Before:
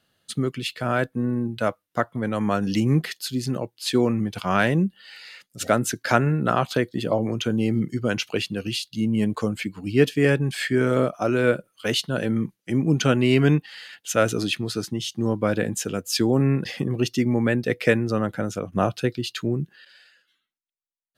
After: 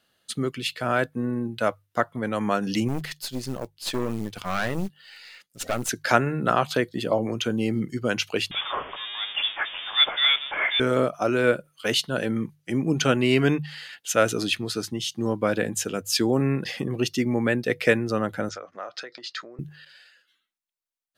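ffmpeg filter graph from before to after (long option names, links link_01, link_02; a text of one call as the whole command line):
ffmpeg -i in.wav -filter_complex "[0:a]asettb=1/sr,asplit=3[link_01][link_02][link_03];[link_01]atrim=end=2.884[link_04];[link_02]atrim=start=2.88:end=5.89,asetpts=PTS-STARTPTS,afade=type=in:duration=0.004:curve=qsin,afade=type=out:start_time=3.006:duration=0.004:curve=qsin,acrusher=bits=6:mode=log:mix=0:aa=0.000001,aeval=exprs='(tanh(10*val(0)+0.7)-tanh(0.7))/10':channel_layout=same[link_05];[link_03]atrim=start=5.886[link_06];[link_04][link_05]acrossfade=duration=0.004:curve1=hsin:curve2=qsin[link_07];[link_07][link_06]acrossfade=duration=0.004:curve1=qsin:curve2=hsin,asettb=1/sr,asplit=3[link_08][link_09][link_10];[link_08]atrim=end=8.514[link_11];[link_09]atrim=start=8.51:end=10.8,asetpts=PTS-STARTPTS,afade=type=in:duration=0.004:curve=qsin,afade=type=out:start_time=2.286:duration=0.004:curve=qsin,aeval=exprs='val(0)+0.5*0.0562*sgn(val(0))':channel_layout=same,highpass=frequency=420:width=0.5412,highpass=frequency=420:width=1.3066,lowpass=frequency=3300:width_type=q:width=0.5098,lowpass=frequency=3300:width_type=q:width=0.6013,lowpass=frequency=3300:width_type=q:width=0.9,lowpass=frequency=3300:width_type=q:width=2.563,afreqshift=-3900[link_12];[link_10]atrim=start=10.796[link_13];[link_11][link_12]acrossfade=duration=0.004:curve1=hsin:curve2=qsin[link_14];[link_14][link_13]acrossfade=duration=0.004:curve1=qsin:curve2=hsin,asettb=1/sr,asplit=3[link_15][link_16][link_17];[link_15]atrim=end=18.494[link_18];[link_16]atrim=start=18.49:end=19.59,asetpts=PTS-STARTPTS,afade=type=in:duration=0.004:curve=qsin,afade=type=out:start_time=1.096:duration=0.004:curve=qsin,acompressor=threshold=-30dB:ratio=20:attack=3.2:release=140:knee=1:detection=peak,highpass=480,equalizer=frequency=560:width_type=q:width=4:gain=6,equalizer=frequency=1300:width_type=q:width=4:gain=7,equalizer=frequency=1900:width_type=q:width=4:gain=8,equalizer=frequency=2800:width_type=q:width=4:gain=-7,equalizer=frequency=5000:width_type=q:width=4:gain=5,lowpass=frequency=6200:width=0.5412,lowpass=frequency=6200:width=1.3066[link_19];[link_17]atrim=start=19.586[link_20];[link_18][link_19]acrossfade=duration=0.004:curve1=hsin:curve2=qsin[link_21];[link_21][link_20]acrossfade=duration=0.004:curve1=qsin:curve2=hsin,equalizer=frequency=110:width=0.4:gain=-5.5,bandreject=frequency=50:width_type=h:width=6,bandreject=frequency=100:width_type=h:width=6,bandreject=frequency=150:width_type=h:width=6,volume=1dB" out.wav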